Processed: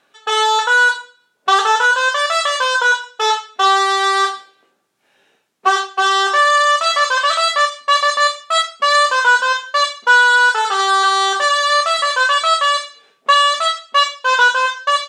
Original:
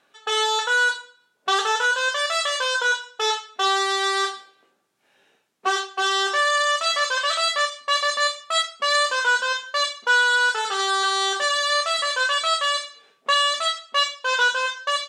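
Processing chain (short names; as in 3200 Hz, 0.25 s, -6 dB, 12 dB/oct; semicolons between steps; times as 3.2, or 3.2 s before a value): dynamic EQ 1000 Hz, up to +7 dB, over -35 dBFS, Q 1.1; gain +3.5 dB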